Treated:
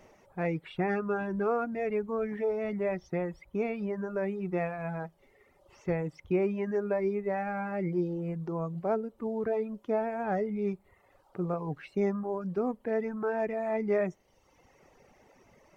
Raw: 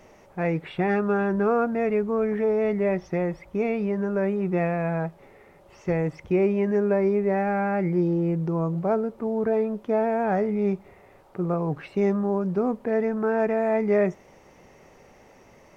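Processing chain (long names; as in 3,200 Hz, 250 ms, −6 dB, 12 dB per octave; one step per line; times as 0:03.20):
reverb reduction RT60 1.1 s
level −5 dB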